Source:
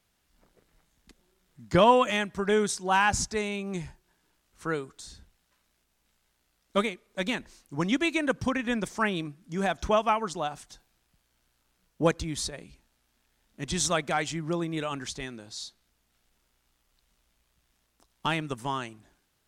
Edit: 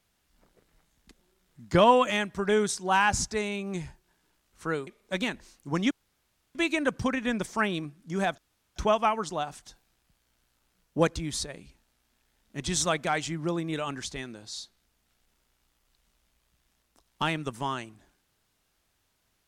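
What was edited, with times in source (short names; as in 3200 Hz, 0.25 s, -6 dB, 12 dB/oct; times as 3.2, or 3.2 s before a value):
4.87–6.93 cut
7.97 insert room tone 0.64 s
9.8 insert room tone 0.38 s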